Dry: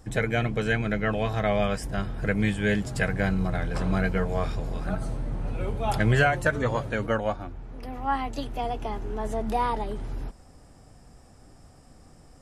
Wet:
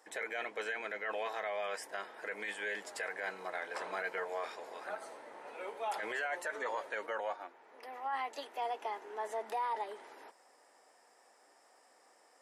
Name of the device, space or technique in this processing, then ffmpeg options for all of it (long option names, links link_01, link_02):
laptop speaker: -af "highpass=frequency=430:width=0.5412,highpass=frequency=430:width=1.3066,equalizer=frequency=930:width_type=o:width=0.27:gain=6.5,equalizer=frequency=1900:width_type=o:width=0.51:gain=7,alimiter=limit=-21.5dB:level=0:latency=1:release=16,volume=-7dB"